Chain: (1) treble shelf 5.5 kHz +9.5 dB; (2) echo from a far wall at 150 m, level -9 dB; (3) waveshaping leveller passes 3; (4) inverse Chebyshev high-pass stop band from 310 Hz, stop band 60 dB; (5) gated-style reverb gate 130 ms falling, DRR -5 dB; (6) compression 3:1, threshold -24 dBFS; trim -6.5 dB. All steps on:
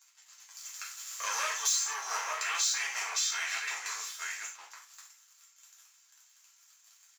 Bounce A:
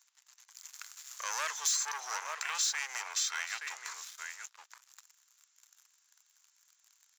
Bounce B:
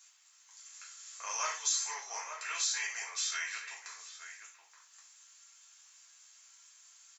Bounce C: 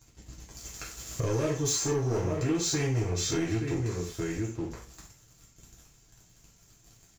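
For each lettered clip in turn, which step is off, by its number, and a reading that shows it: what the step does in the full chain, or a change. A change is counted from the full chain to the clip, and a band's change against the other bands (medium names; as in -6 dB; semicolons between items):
5, crest factor change +2.5 dB; 3, momentary loudness spread change +1 LU; 4, 500 Hz band +23.0 dB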